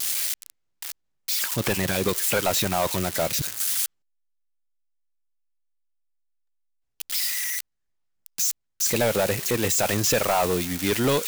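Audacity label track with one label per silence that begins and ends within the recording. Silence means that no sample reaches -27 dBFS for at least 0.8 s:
3.860000	7.000000	silence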